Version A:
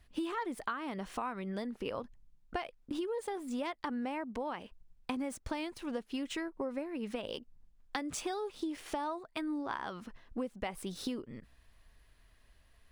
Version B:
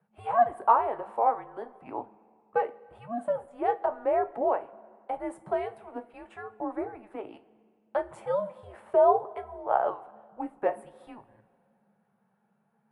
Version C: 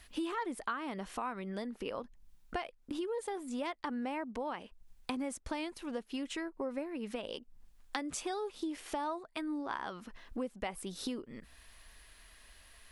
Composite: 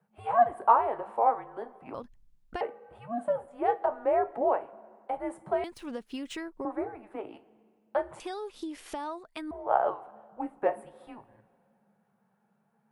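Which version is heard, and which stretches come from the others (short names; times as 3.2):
B
1.94–2.61 from A
5.64–6.65 from A
8.2–9.51 from C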